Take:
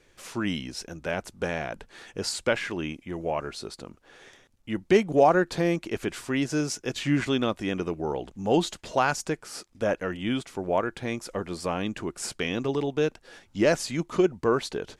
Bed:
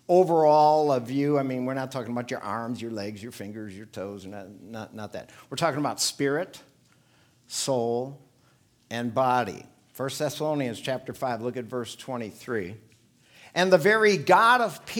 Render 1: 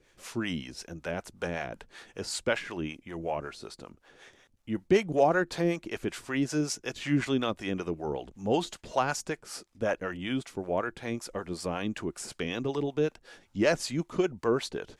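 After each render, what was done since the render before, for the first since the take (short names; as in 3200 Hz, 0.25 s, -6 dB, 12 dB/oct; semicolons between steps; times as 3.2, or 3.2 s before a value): harmonic tremolo 5.3 Hz, depth 70%, crossover 540 Hz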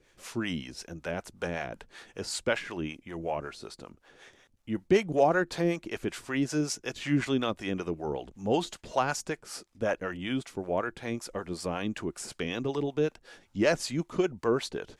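nothing audible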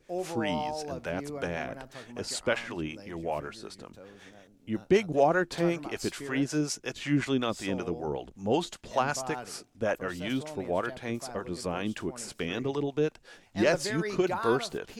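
add bed -15 dB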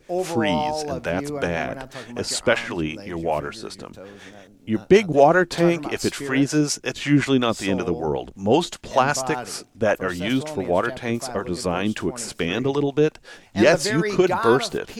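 gain +9 dB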